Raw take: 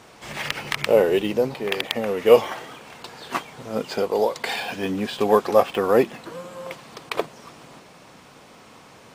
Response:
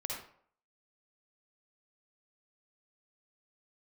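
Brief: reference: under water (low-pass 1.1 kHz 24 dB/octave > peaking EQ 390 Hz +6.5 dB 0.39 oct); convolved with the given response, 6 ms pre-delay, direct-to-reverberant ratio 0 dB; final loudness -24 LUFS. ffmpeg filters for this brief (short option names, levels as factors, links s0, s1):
-filter_complex "[0:a]asplit=2[s0][s1];[1:a]atrim=start_sample=2205,adelay=6[s2];[s1][s2]afir=irnorm=-1:irlink=0,volume=0.841[s3];[s0][s3]amix=inputs=2:normalize=0,lowpass=f=1100:w=0.5412,lowpass=f=1100:w=1.3066,equalizer=f=390:t=o:w=0.39:g=6.5,volume=0.447"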